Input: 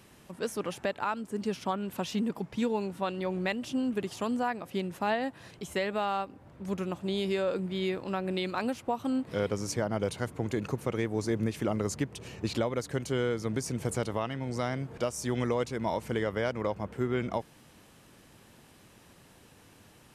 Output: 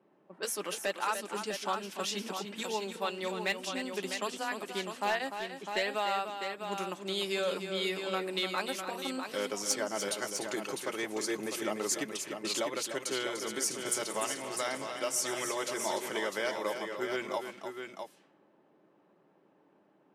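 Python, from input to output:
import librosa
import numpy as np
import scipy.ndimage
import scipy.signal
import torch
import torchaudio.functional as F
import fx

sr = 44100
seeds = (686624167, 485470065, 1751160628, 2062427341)

y = fx.reverse_delay_fb(x, sr, ms=110, feedback_pct=72, wet_db=-14.0, at=(13.47, 16.09))
y = scipy.signal.sosfilt(scipy.signal.butter(4, 190.0, 'highpass', fs=sr, output='sos'), y)
y = fx.env_lowpass(y, sr, base_hz=540.0, full_db=-30.0)
y = fx.tilt_eq(y, sr, slope=3.0)
y = fx.notch_comb(y, sr, f0_hz=240.0)
y = np.clip(10.0 ** (21.5 / 20.0) * y, -1.0, 1.0) / 10.0 ** (21.5 / 20.0)
y = fx.echo_multitap(y, sr, ms=(296, 652), db=(-8.5, -7.0))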